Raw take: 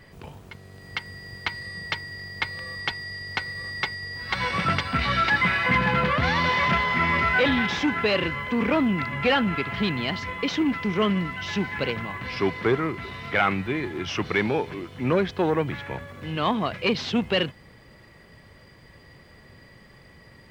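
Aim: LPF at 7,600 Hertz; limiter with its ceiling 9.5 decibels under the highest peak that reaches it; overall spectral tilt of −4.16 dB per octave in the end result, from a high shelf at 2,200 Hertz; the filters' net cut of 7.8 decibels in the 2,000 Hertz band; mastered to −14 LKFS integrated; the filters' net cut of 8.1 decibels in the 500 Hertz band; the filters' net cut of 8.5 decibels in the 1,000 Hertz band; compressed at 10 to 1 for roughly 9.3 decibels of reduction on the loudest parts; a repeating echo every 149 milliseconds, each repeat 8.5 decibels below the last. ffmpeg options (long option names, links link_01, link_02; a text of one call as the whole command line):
ffmpeg -i in.wav -af "lowpass=7600,equalizer=frequency=500:width_type=o:gain=-8.5,equalizer=frequency=1000:width_type=o:gain=-6,equalizer=frequency=2000:width_type=o:gain=-5,highshelf=frequency=2200:gain=-4,acompressor=threshold=-31dB:ratio=10,alimiter=level_in=4.5dB:limit=-24dB:level=0:latency=1,volume=-4.5dB,aecho=1:1:149|298|447|596:0.376|0.143|0.0543|0.0206,volume=23.5dB" out.wav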